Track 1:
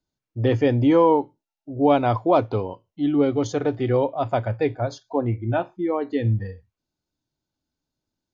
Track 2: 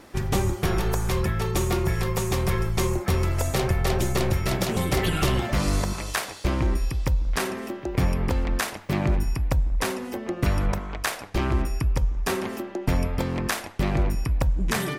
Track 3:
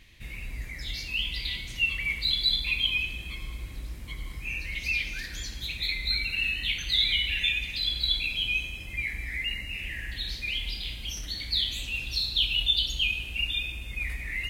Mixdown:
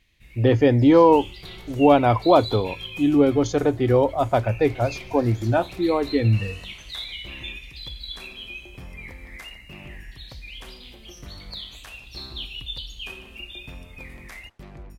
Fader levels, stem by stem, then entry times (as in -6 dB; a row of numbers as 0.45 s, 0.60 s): +2.5 dB, -19.0 dB, -9.5 dB; 0.00 s, 0.80 s, 0.00 s